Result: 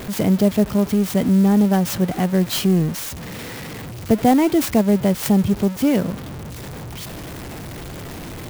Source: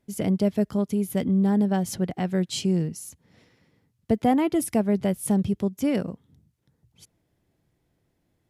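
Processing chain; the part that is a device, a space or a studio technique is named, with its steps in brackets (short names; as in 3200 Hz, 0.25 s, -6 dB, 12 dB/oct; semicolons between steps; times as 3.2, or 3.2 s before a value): early CD player with a faulty converter (zero-crossing step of -32 dBFS; clock jitter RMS 0.031 ms); gain +5.5 dB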